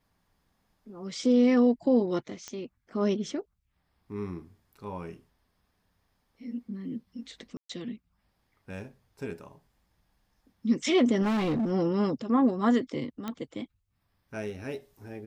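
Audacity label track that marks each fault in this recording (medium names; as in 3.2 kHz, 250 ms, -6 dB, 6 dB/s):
2.480000	2.480000	pop -23 dBFS
7.570000	7.690000	dropout 124 ms
11.220000	11.720000	clipped -24.5 dBFS
13.280000	13.280000	pop -20 dBFS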